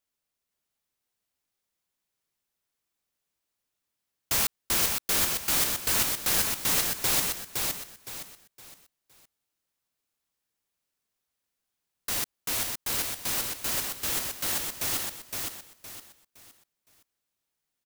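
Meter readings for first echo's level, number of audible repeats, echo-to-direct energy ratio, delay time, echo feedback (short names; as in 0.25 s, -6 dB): -4.0 dB, 4, -3.5 dB, 0.514 s, 32%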